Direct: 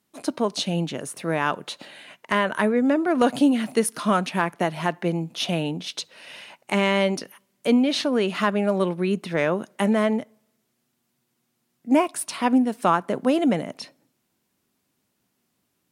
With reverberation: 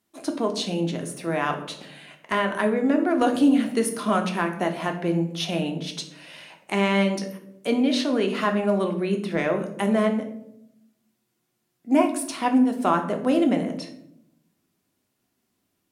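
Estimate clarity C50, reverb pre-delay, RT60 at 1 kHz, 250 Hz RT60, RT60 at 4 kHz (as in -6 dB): 10.0 dB, 3 ms, 0.65 s, 1.2 s, 0.45 s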